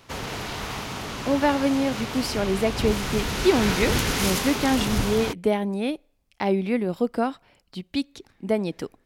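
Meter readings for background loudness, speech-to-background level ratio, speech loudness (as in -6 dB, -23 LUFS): -28.0 LUFS, 2.5 dB, -25.5 LUFS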